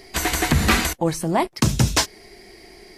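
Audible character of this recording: noise floor -49 dBFS; spectral tilt -4.0 dB/octave

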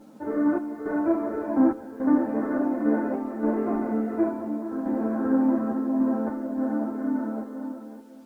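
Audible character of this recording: random-step tremolo, depth 80%; a quantiser's noise floor 10-bit, dither none; a shimmering, thickened sound

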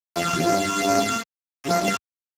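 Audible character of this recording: a buzz of ramps at a fixed pitch in blocks of 64 samples; phasing stages 8, 2.4 Hz, lowest notch 550–3500 Hz; a quantiser's noise floor 6-bit, dither none; Speex

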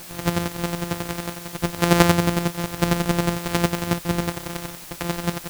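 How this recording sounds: a buzz of ramps at a fixed pitch in blocks of 256 samples; chopped level 11 Hz, depth 60%, duty 25%; a quantiser's noise floor 8-bit, dither triangular

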